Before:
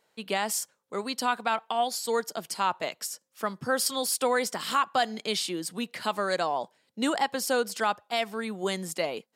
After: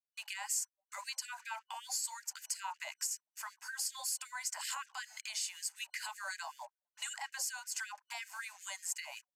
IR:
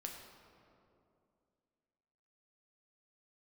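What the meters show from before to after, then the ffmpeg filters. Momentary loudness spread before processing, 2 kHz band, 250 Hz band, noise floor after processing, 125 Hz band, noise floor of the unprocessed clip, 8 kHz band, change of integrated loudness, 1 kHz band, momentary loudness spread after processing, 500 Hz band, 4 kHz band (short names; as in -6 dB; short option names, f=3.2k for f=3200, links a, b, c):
8 LU, -9.5 dB, under -40 dB, under -85 dBFS, under -40 dB, -72 dBFS, -3.0 dB, -10.5 dB, -17.5 dB, 8 LU, -31.0 dB, -10.0 dB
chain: -filter_complex "[0:a]aecho=1:1:2:0.35,acrusher=bits=7:mix=0:aa=0.5,lowshelf=f=400:t=q:w=1.5:g=-7,aresample=32000,aresample=44100,alimiter=limit=-22.5dB:level=0:latency=1:release=167,superequalizer=8b=0.282:10b=0.562:13b=0.398:15b=2.24,acrossover=split=200|940[a][b][c];[b]adelay=30[d];[a]adelay=460[e];[e][d][c]amix=inputs=3:normalize=0,acompressor=threshold=-47dB:ratio=1.5,afftfilt=real='re*gte(b*sr/1024,550*pow(1600/550,0.5+0.5*sin(2*PI*5.3*pts/sr)))':imag='im*gte(b*sr/1024,550*pow(1600/550,0.5+0.5*sin(2*PI*5.3*pts/sr)))':win_size=1024:overlap=0.75,volume=1.5dB"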